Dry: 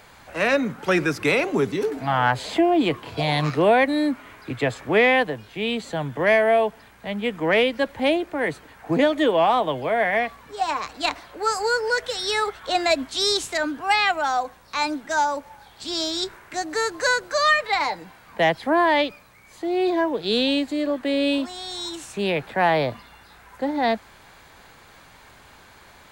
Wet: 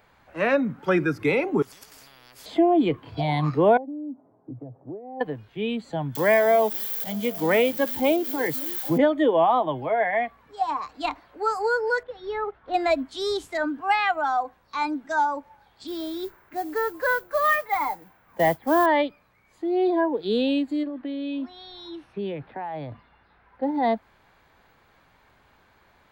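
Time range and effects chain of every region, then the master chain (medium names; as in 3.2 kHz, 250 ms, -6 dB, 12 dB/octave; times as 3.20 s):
1.62–2.46 s: compression 4:1, threshold -28 dBFS + spectrum-flattening compressor 10:1
3.77–5.21 s: Chebyshev band-pass 120–750 Hz, order 3 + compression 5:1, threshold -31 dBFS
6.15–8.98 s: zero-crossing glitches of -15.5 dBFS + repeats whose band climbs or falls 269 ms, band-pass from 190 Hz, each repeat 0.7 oct, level -11 dB
12.03–12.74 s: block-companded coder 3-bit + tape spacing loss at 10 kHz 41 dB
15.87–18.86 s: low-pass 2.5 kHz + modulation noise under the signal 11 dB
20.83–23.63 s: boxcar filter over 6 samples + compression 10:1, threshold -24 dBFS
whole clip: peaking EQ 8.9 kHz -11.5 dB 2 oct; spectral noise reduction 9 dB; dynamic bell 5.4 kHz, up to -7 dB, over -43 dBFS, Q 0.75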